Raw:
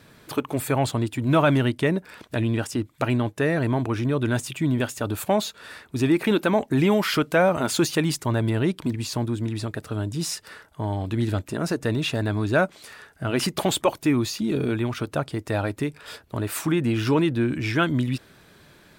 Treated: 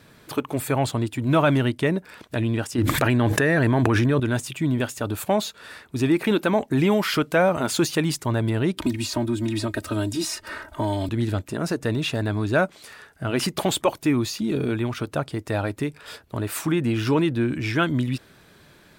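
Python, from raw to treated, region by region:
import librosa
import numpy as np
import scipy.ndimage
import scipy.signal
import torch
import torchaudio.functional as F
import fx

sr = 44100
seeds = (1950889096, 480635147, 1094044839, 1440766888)

y = fx.chain(x, sr, fx.peak_eq(hz=1700.0, db=7.0, octaves=0.3),
    fx.env_flatten(amount_pct=100), at=(2.78, 4.2))
y = fx.chain(y, sr, fx.comb(ms=3.2, depth=0.93),
    fx.band_squash(depth_pct=70), at=(8.77, 11.09))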